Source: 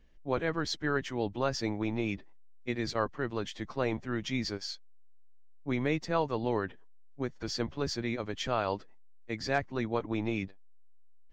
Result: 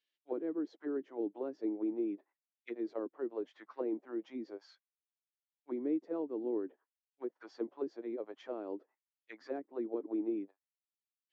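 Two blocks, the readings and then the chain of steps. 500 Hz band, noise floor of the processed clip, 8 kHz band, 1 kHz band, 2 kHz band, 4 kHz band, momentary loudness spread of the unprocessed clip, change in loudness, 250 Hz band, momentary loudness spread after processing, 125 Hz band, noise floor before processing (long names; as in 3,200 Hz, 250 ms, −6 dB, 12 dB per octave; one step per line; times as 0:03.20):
−5.0 dB, below −85 dBFS, below −30 dB, −16.5 dB, −21.0 dB, below −25 dB, 8 LU, −6.0 dB, −3.0 dB, 11 LU, below −30 dB, −50 dBFS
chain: envelope filter 320–4,000 Hz, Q 2.3, down, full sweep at −27.5 dBFS
four-pole ladder high-pass 250 Hz, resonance 40%
level +4 dB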